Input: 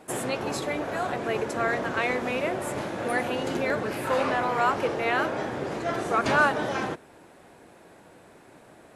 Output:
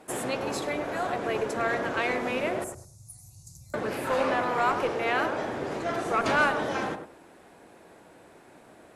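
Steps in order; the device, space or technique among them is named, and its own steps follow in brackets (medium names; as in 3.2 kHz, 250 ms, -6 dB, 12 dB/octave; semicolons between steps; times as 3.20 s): 2.64–3.74 s: inverse Chebyshev band-stop 230–3300 Hz, stop band 40 dB; peaking EQ 130 Hz -3.5 dB 1 oct; rockabilly slapback (valve stage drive 13 dB, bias 0.4; tape echo 102 ms, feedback 24%, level -6 dB, low-pass 1.3 kHz)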